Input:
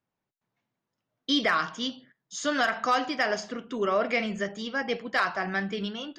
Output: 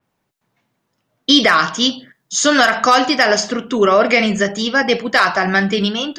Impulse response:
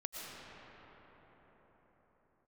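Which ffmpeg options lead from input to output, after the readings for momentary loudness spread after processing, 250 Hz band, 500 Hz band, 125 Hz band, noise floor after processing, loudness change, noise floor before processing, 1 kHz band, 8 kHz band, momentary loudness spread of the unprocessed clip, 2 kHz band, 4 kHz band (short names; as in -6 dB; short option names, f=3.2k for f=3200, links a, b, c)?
6 LU, +14.0 dB, +13.5 dB, +14.5 dB, -71 dBFS, +13.5 dB, under -85 dBFS, +12.5 dB, +19.0 dB, 8 LU, +13.0 dB, +15.5 dB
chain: -af "alimiter=level_in=16.5dB:limit=-1dB:release=50:level=0:latency=1,adynamicequalizer=threshold=0.0447:dfrequency=4100:dqfactor=0.7:tfrequency=4100:tqfactor=0.7:attack=5:release=100:ratio=0.375:range=3:mode=boostabove:tftype=highshelf,volume=-2dB"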